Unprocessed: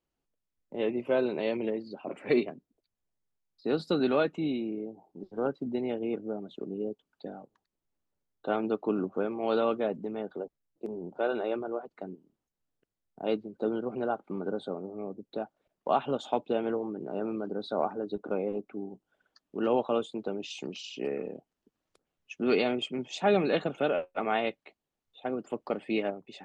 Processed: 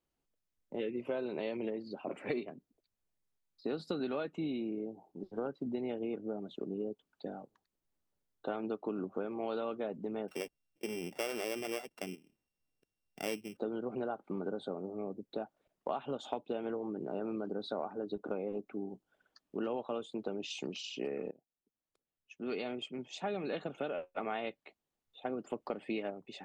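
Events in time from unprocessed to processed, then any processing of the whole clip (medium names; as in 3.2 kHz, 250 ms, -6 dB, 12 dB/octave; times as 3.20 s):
0.80–1.00 s: time-frequency box 550–1300 Hz -14 dB
10.28–13.57 s: sorted samples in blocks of 16 samples
21.31–25.55 s: fade in, from -20 dB
whole clip: compression 6:1, threshold -32 dBFS; trim -1 dB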